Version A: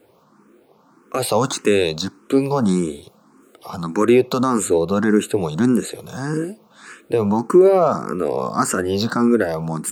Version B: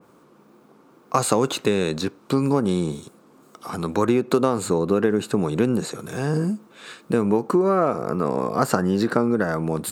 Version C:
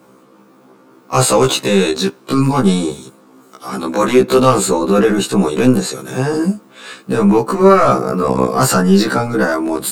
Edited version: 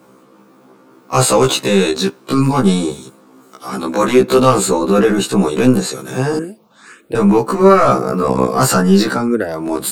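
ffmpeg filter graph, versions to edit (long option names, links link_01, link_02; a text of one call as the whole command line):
ffmpeg -i take0.wav -i take1.wav -i take2.wav -filter_complex "[0:a]asplit=2[link_01][link_02];[2:a]asplit=3[link_03][link_04][link_05];[link_03]atrim=end=6.392[link_06];[link_01]atrim=start=6.388:end=7.152[link_07];[link_04]atrim=start=7.148:end=9.32[link_08];[link_02]atrim=start=9.08:end=9.73[link_09];[link_05]atrim=start=9.49[link_10];[link_06][link_07]acrossfade=duration=0.004:curve1=hsin:curve2=hsin[link_11];[link_11][link_08]acrossfade=duration=0.004:curve1=hsin:curve2=hsin[link_12];[link_12][link_09]acrossfade=duration=0.24:curve1=tri:curve2=tri[link_13];[link_13][link_10]acrossfade=duration=0.24:curve1=tri:curve2=tri" out.wav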